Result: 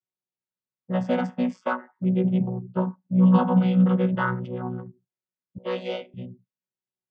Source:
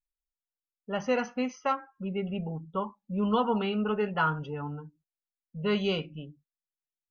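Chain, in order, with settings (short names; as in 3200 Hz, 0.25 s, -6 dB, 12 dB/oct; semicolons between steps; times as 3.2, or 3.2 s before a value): chord vocoder bare fifth, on B2; 5.58–6.14 HPF 350 Hz 24 dB/oct; gain +9 dB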